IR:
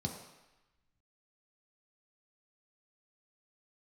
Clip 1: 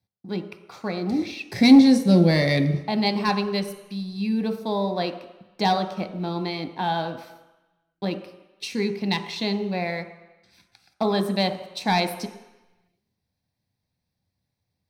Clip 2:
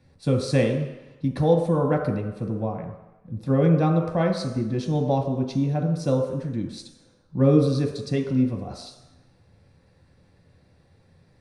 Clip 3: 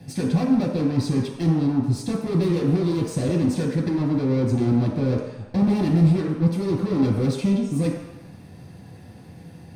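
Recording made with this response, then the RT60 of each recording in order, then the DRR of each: 2; 1.0, 1.0, 1.0 s; 6.0, 1.0, -4.5 dB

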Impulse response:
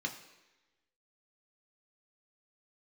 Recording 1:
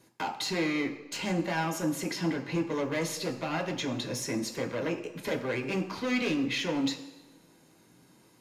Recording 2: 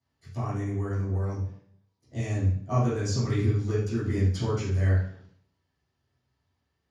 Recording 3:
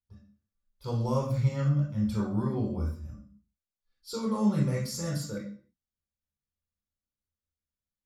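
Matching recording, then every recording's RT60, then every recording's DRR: 1; 1.1, 0.60, 0.45 s; 2.0, -14.0, -5.0 dB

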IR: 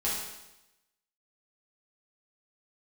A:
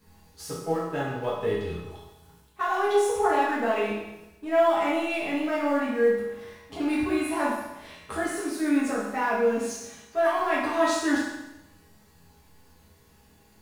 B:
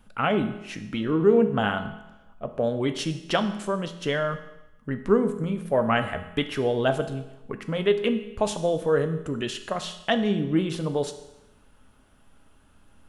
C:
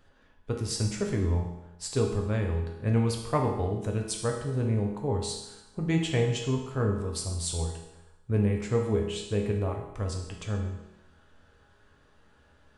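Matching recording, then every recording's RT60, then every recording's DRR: A; 0.95, 0.95, 0.95 s; -8.0, 7.5, 0.0 dB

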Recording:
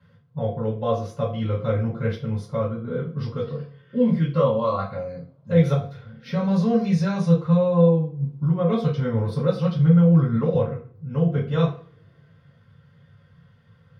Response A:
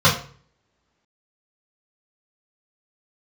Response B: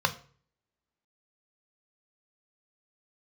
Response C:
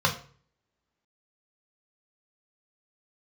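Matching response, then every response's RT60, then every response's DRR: A; 0.45, 0.45, 0.45 s; -8.0, 7.0, 0.5 dB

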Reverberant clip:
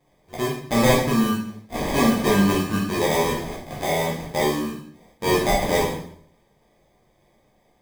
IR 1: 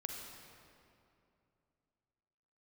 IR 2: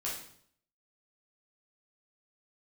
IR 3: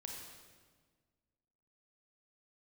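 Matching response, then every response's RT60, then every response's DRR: 2; 2.7, 0.60, 1.5 s; 1.5, -6.5, 0.0 dB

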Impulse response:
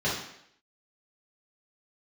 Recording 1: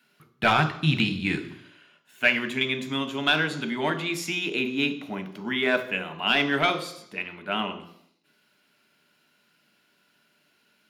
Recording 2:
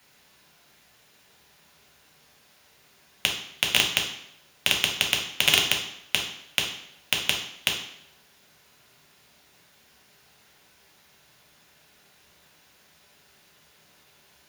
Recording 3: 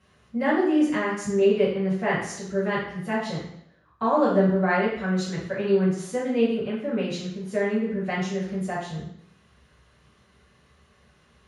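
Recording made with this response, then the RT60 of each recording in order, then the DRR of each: 3; 0.70, 0.70, 0.70 s; 7.5, -0.5, -9.5 dB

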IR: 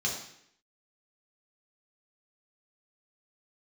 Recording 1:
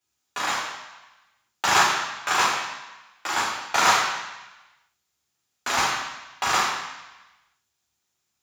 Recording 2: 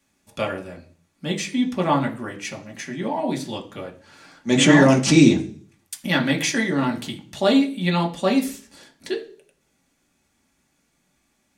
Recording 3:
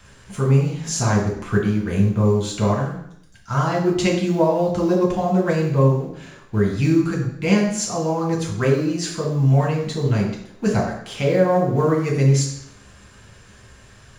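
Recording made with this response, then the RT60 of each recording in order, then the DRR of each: 3; 1.1, 0.45, 0.70 s; -5.0, 0.0, -3.0 dB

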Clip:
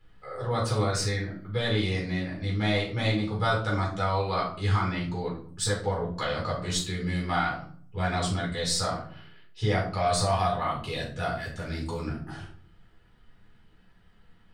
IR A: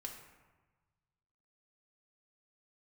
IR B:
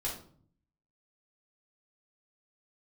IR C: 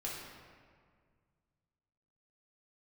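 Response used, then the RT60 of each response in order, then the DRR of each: B; 1.3, 0.50, 1.9 s; 0.0, -4.5, -5.5 dB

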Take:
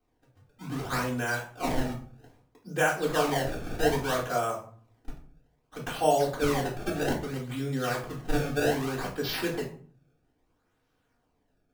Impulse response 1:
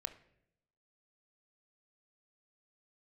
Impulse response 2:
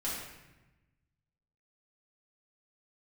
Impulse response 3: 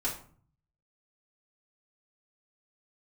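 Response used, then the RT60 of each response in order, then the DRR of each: 3; 0.75, 1.0, 0.45 s; 9.0, -9.0, -8.0 dB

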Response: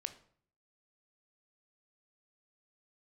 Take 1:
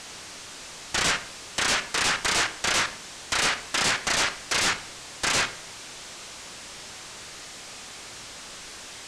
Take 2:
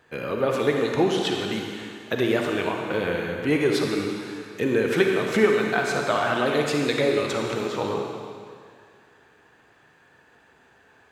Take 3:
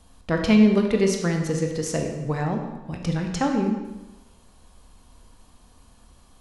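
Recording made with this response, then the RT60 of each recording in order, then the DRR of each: 1; 0.55, 2.1, 1.1 s; 9.0, 1.0, 2.5 dB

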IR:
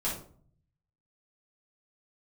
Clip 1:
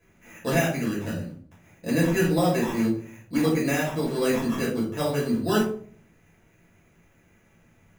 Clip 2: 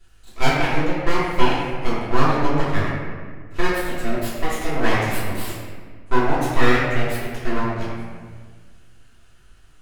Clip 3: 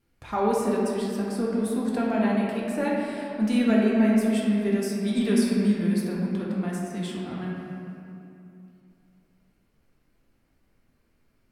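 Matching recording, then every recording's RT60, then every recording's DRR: 1; 0.50, 1.6, 2.8 s; -7.5, -9.5, -5.0 dB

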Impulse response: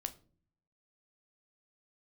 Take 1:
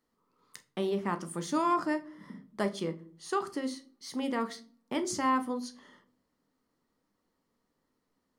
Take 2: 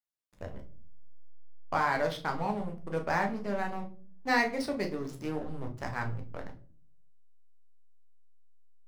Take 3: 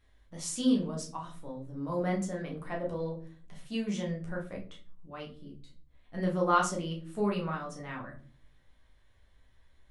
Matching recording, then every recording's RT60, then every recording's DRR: 1; not exponential, not exponential, not exponential; 8.5, 2.5, -2.0 dB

